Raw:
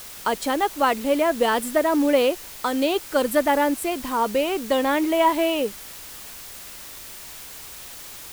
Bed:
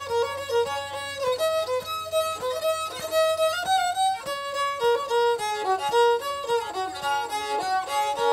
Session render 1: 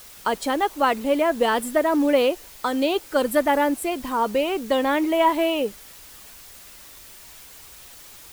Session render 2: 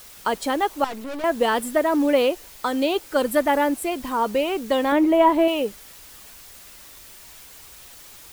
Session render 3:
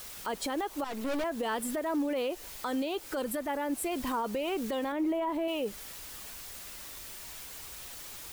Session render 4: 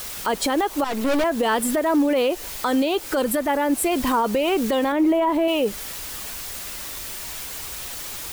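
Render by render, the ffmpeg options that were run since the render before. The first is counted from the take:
-af "afftdn=nr=6:nf=-40"
-filter_complex "[0:a]asettb=1/sr,asplit=3[s0][s1][s2];[s0]atrim=end=0.844[s3];[s1]atrim=start=0.84:end=1.24,asetpts=PTS-STARTPTS,afade=t=in:d=0.004:c=qsin,afade=t=out:st=0.396:d=0.004:c=qsin,aeval=exprs='(tanh(31.6*val(0)+0.6)-tanh(0.6))/31.6':c=same[s4];[s2]atrim=start=1.236[s5];[s3][s4]acrossfade=d=0.004:c1=hsin:c2=qsin[s6];[s6][s5]acrossfade=d=0.004:c1=qsin:c2=hsin,asettb=1/sr,asplit=3[s7][s8][s9];[s7]atrim=end=4.924[s10];[s8]atrim=start=4.92:end=5.48,asetpts=PTS-STARTPTS,afade=t=in:d=0.004:c=qsin,afade=t=out:st=0.556:d=0.004:c=qsin,tiltshelf=f=1300:g=5.5[s11];[s9]atrim=start=5.476[s12];[s10][s11]acrossfade=d=0.004:c1=hsin:c2=qsin[s13];[s13][s12]acrossfade=d=0.004:c1=qsin:c2=hsin"
-af "acompressor=threshold=0.0562:ratio=6,alimiter=level_in=1.06:limit=0.0631:level=0:latency=1:release=27,volume=0.944"
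-af "volume=3.76"

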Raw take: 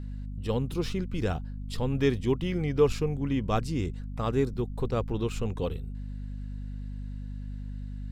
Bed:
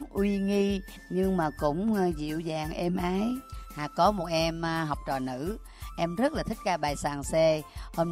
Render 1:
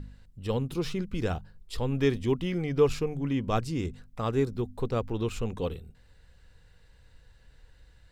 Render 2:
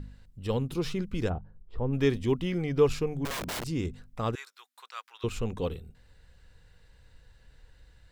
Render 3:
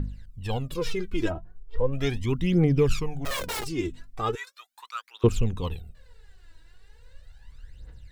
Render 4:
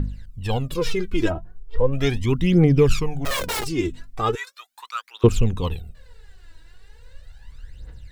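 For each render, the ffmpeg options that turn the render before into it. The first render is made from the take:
-af "bandreject=f=50:t=h:w=4,bandreject=f=100:t=h:w=4,bandreject=f=150:t=h:w=4,bandreject=f=200:t=h:w=4,bandreject=f=250:t=h:w=4"
-filter_complex "[0:a]asplit=3[s0][s1][s2];[s0]afade=t=out:st=1.28:d=0.02[s3];[s1]lowpass=1000,afade=t=in:st=1.28:d=0.02,afade=t=out:st=1.92:d=0.02[s4];[s2]afade=t=in:st=1.92:d=0.02[s5];[s3][s4][s5]amix=inputs=3:normalize=0,asettb=1/sr,asplit=3[s6][s7][s8];[s6]atrim=end=3.254[s9];[s7]atrim=start=3.25:end=3.67,asetpts=PTS-STARTPTS,afade=t=in:d=0.004:c=qsin,afade=t=out:st=0.416:d=0.004:c=qsin,aeval=exprs='(mod(29.9*val(0)+1,2)-1)/29.9':c=same[s10];[s8]atrim=start=3.666[s11];[s9][s10]acrossfade=d=0.004:c1=hsin:c2=qsin[s12];[s12][s11]acrossfade=d=0.004:c1=qsin:c2=hsin,asettb=1/sr,asplit=3[s13][s14][s15];[s13]atrim=end=4.354[s16];[s14]atrim=start=4.35:end=5.24,asetpts=PTS-STARTPTS,afade=t=in:d=0.004:c=qsin,afade=t=out:st=0.886:d=0.004:c=qsin,highpass=f=1200:w=0.5412,highpass=f=1200:w=1.3066[s17];[s15]atrim=start=5.236[s18];[s16][s17]acrossfade=d=0.004:c1=hsin:c2=qsin[s19];[s19][s18]acrossfade=d=0.004:c1=qsin:c2=hsin"
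-af "aphaser=in_gain=1:out_gain=1:delay=3.2:decay=0.75:speed=0.38:type=triangular"
-af "volume=1.88,alimiter=limit=0.708:level=0:latency=1"

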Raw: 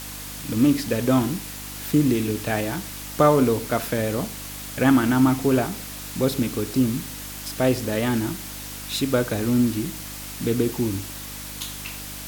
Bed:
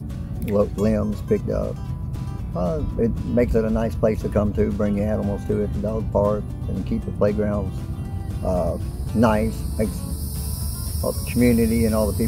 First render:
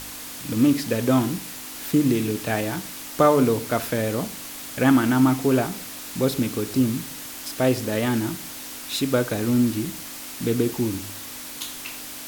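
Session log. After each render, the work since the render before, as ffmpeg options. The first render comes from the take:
-af "bandreject=f=50:t=h:w=4,bandreject=f=100:t=h:w=4,bandreject=f=150:t=h:w=4,bandreject=f=200:t=h:w=4"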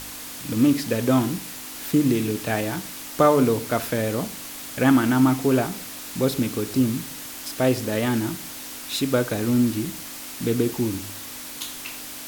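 -af anull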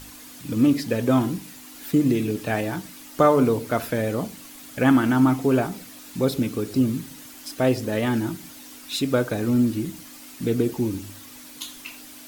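-af "afftdn=nr=9:nf=-37"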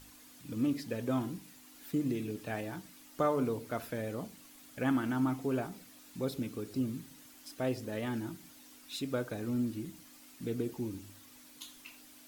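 -af "volume=0.224"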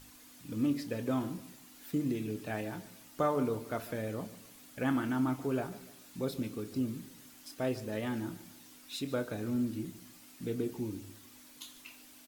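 -filter_complex "[0:a]asplit=2[s0][s1];[s1]adelay=28,volume=0.224[s2];[s0][s2]amix=inputs=2:normalize=0,aecho=1:1:146|292|438:0.141|0.0565|0.0226"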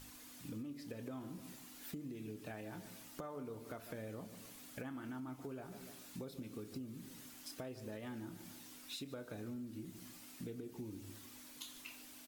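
-af "alimiter=level_in=1.41:limit=0.0631:level=0:latency=1:release=314,volume=0.708,acompressor=threshold=0.00631:ratio=6"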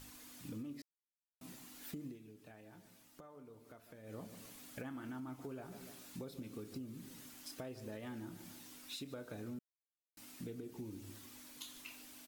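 -filter_complex "[0:a]asplit=7[s0][s1][s2][s3][s4][s5][s6];[s0]atrim=end=0.82,asetpts=PTS-STARTPTS,afade=t=out:st=0.816:d=0.004:c=hsin[s7];[s1]atrim=start=0.82:end=1.41,asetpts=PTS-STARTPTS,volume=0[s8];[s2]atrim=start=1.41:end=2.19,asetpts=PTS-STARTPTS,afade=t=in:d=0.004:c=hsin,afade=t=out:st=0.66:d=0.12:silence=0.316228[s9];[s3]atrim=start=2.19:end=4.03,asetpts=PTS-STARTPTS,volume=0.316[s10];[s4]atrim=start=4.03:end=9.59,asetpts=PTS-STARTPTS,afade=t=in:d=0.12:silence=0.316228,afade=t=out:st=5.556:d=0.004:c=hsin[s11];[s5]atrim=start=9.59:end=10.17,asetpts=PTS-STARTPTS,volume=0[s12];[s6]atrim=start=10.17,asetpts=PTS-STARTPTS,afade=t=in:d=0.004:c=hsin[s13];[s7][s8][s9][s10][s11][s12][s13]concat=n=7:v=0:a=1"

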